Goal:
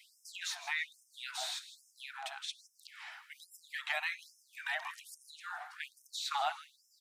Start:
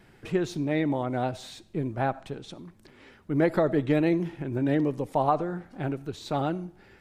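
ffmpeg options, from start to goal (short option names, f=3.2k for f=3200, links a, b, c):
-filter_complex "[0:a]acrossover=split=570|2000[a][b][c];[a]acompressor=threshold=-35dB:ratio=4[d];[b]acompressor=threshold=-38dB:ratio=4[e];[c]acompressor=threshold=-43dB:ratio=4[f];[d][e][f]amix=inputs=3:normalize=0,asplit=2[g][h];[h]aecho=0:1:160|320|480:0.2|0.0638|0.0204[i];[g][i]amix=inputs=2:normalize=0,afftfilt=real='re*gte(b*sr/1024,620*pow(5200/620,0.5+0.5*sin(2*PI*1.2*pts/sr)))':imag='im*gte(b*sr/1024,620*pow(5200/620,0.5+0.5*sin(2*PI*1.2*pts/sr)))':win_size=1024:overlap=0.75,volume=6.5dB"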